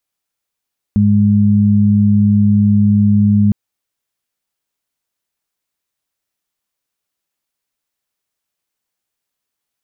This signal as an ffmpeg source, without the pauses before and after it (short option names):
-f lavfi -i "aevalsrc='0.251*sin(2*PI*103*t)+0.335*sin(2*PI*206*t)':d=2.56:s=44100"